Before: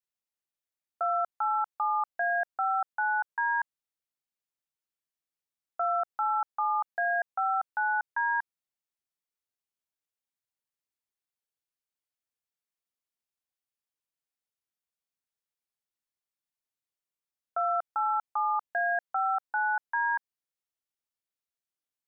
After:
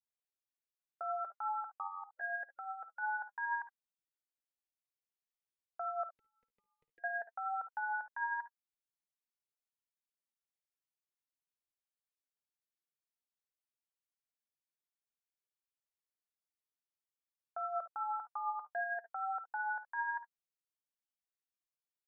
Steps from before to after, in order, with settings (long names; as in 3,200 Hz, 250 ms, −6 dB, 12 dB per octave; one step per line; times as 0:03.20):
0:01.87–0:03.02: gain on a spectral selection 580–1,400 Hz −6 dB
0:06.09–0:07.04: inverse Chebyshev band-stop filter 640–1,500 Hz, stop band 40 dB
flanger 0.51 Hz, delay 0.7 ms, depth 6 ms, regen +47%
0:01.75–0:02.21: ring modulation 45 Hz
ambience of single reflections 55 ms −13.5 dB, 70 ms −16.5 dB
level −5.5 dB